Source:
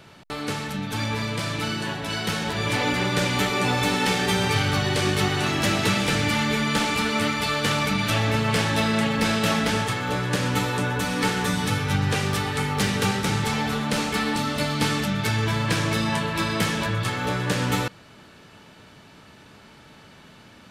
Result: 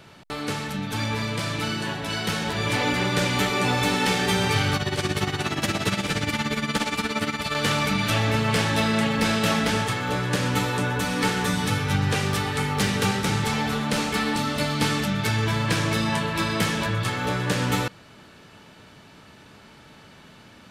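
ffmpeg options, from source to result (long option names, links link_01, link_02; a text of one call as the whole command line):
ffmpeg -i in.wav -filter_complex "[0:a]asettb=1/sr,asplit=3[link_01][link_02][link_03];[link_01]atrim=end=4.764[link_04];[link_02]atrim=start=4.76:end=7.55,asetpts=PTS-STARTPTS,afade=type=in:duration=0.004:curve=qsin,afade=type=out:start_time=2.786:duration=0.004:curve=qsin,tremolo=f=17:d=0.72[link_05];[link_03]atrim=start=7.546[link_06];[link_04][link_05]acrossfade=duration=0.004:curve1=hsin:curve2=qsin[link_07];[link_07][link_06]acrossfade=duration=0.004:curve1=qsin:curve2=hsin" out.wav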